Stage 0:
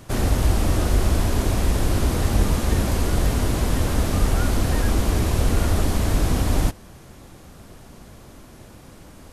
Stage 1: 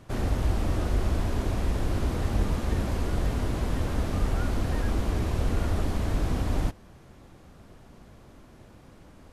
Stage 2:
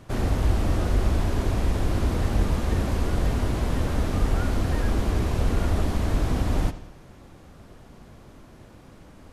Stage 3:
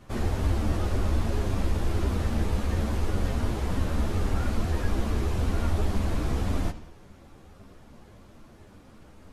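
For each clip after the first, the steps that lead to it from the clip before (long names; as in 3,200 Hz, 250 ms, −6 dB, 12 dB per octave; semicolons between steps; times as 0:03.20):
high-shelf EQ 5,400 Hz −11 dB; level −6.5 dB
bucket-brigade delay 86 ms, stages 4,096, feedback 51%, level −14.5 dB; level +3 dB
string-ensemble chorus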